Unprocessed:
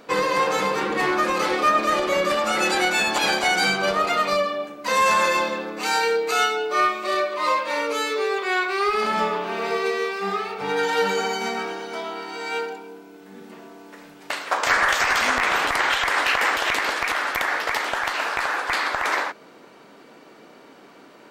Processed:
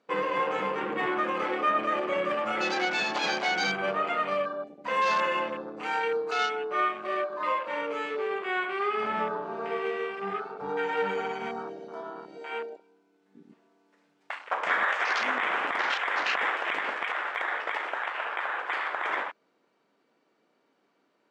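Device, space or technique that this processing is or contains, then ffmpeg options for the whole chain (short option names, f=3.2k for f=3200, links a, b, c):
over-cleaned archive recording: -filter_complex "[0:a]asettb=1/sr,asplit=3[a][b][c];[a]atrim=end=18.034[d];[b]atrim=start=18.03:end=18.59,asetpts=PTS-STARTPTS,afade=t=in:d=0.004:c=qsin,afade=t=out:st=0.556:d=0.004:c=qsin,bass=f=250:g=-7,treble=f=4k:g=-5[e];[c]atrim=start=18.586[f];[d][e]acrossfade=d=0.004:c1=hsin:c2=qsin[g];[g][f]acrossfade=d=0.004:c1=qsin:c2=hsin,highpass=130,lowpass=7.9k,afwtdn=0.0447,volume=-6.5dB"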